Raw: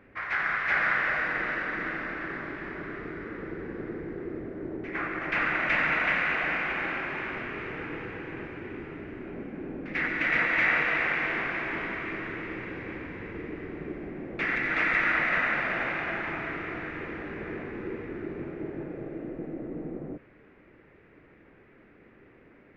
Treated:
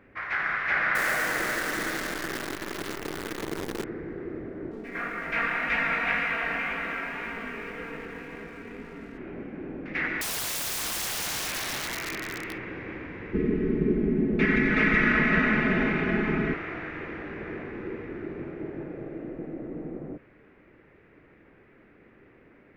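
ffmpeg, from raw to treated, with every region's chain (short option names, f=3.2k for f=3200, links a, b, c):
-filter_complex "[0:a]asettb=1/sr,asplit=3[a][b][c];[a]atrim=end=0.954[d];[b]atrim=start=0.95:end=3.84,asetpts=PTS-STARTPTS,afade=t=in:d=0.004:c=qsin,afade=t=out:st=2.886:d=0.004:c=qsin,equalizer=f=450:t=o:w=2.1:g=4.5,acrusher=bits=6:dc=4:mix=0:aa=0.000001[e];[c]atrim=start=3.836[f];[d][e]acrossfade=d=0.004:c1=hsin:c2=qsin[g];[g][f]acrossfade=d=0.004:c1=qsin:c2=hsin,asettb=1/sr,asplit=3[h][i][j];[h]atrim=end=4.714[k];[i]atrim=start=4.71:end=9.18,asetpts=PTS-STARTPTS,afade=t=in:d=0.004:c=qsin,afade=t=out:st=4.466:d=0.004:c=qsin,aecho=1:1:4.3:0.96,atrim=end_sample=197127,flanger=delay=17.5:depth=4.3:speed=1.9,aeval=exprs='sgn(val(0))*max(abs(val(0))-0.00141,0)':c=same[l];[j]atrim=start=9.176[m];[k][l]acrossfade=d=0.004:c1=hsin:c2=qsin[n];[n][m]acrossfade=d=0.004:c1=qsin:c2=hsin,asettb=1/sr,asplit=3[o][p][q];[o]atrim=end=10.214[r];[p]atrim=start=10.21:end=12.58,asetpts=PTS-STARTPTS,afade=t=in:d=0.004:c=qsin,afade=t=out:st=2.366:d=0.004:c=qsin,aemphasis=mode=production:type=75fm,aeval=exprs='(mod(21.1*val(0)+1,2)-1)/21.1':c=same[s];[q]atrim=start=12.576[t];[r][s]acrossfade=d=0.004:c1=hsin:c2=qsin[u];[u][t]acrossfade=d=0.004:c1=qsin:c2=hsin,asettb=1/sr,asplit=3[v][w][x];[v]atrim=end=13.334[y];[w]atrim=start=13.33:end=16.54,asetpts=PTS-STARTPTS,afade=t=in:d=0.004:c=qsin,afade=t=out:st=3.206:d=0.004:c=qsin,lowshelf=f=460:t=q:w=1.5:g=11.5,aecho=1:1:4.7:0.77,atrim=end_sample=141561[z];[x]atrim=start=16.536[aa];[y][z]acrossfade=d=0.004:c1=hsin:c2=qsin[ab];[ab][aa]acrossfade=d=0.004:c1=qsin:c2=hsin"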